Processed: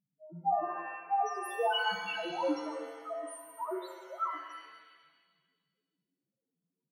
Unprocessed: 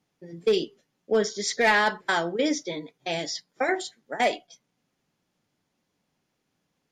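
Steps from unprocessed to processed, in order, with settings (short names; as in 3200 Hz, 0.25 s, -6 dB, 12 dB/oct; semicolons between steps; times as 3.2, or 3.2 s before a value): trilling pitch shifter +10 st, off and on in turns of 0.155 s; loudest bins only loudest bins 1; shimmer reverb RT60 1.5 s, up +7 st, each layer -8 dB, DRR 4 dB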